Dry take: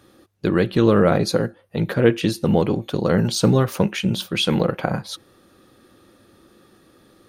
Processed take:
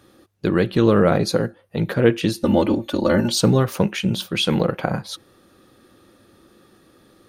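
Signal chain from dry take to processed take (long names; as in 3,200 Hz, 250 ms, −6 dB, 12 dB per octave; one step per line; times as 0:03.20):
0:02.43–0:03.41: comb filter 3.4 ms, depth 94%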